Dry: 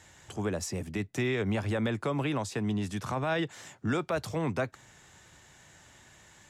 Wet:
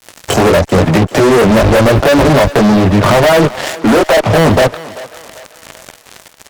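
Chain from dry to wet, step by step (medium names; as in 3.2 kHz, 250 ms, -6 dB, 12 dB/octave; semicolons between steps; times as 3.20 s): 1.30–2.49 s: octave divider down 1 oct, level -5 dB; 3.60–4.22 s: Chebyshev high-pass 220 Hz, order 5; low-pass that closes with the level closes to 960 Hz, closed at -29 dBFS; peaking EQ 610 Hz +11.5 dB 0.78 oct; in parallel at +3 dB: compression 5:1, threshold -33 dBFS, peak gain reduction 13 dB; on the sum: chorus 0.93 Hz, delay 17.5 ms, depth 5.8 ms; fuzz box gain 38 dB, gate -43 dBFS; thinning echo 391 ms, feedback 49%, high-pass 440 Hz, level -16 dB; trim +7 dB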